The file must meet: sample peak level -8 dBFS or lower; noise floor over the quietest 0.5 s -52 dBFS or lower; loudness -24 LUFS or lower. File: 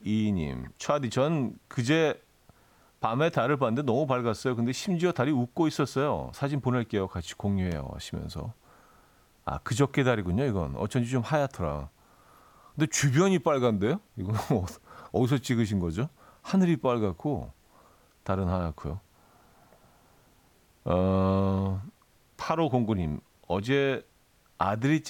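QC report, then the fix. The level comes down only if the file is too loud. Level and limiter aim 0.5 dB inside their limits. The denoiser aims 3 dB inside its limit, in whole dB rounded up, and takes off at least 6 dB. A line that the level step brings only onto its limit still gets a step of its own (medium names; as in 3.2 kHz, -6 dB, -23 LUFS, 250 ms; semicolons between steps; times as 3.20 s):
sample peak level -12.0 dBFS: pass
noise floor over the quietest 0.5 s -63 dBFS: pass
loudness -28.5 LUFS: pass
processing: none needed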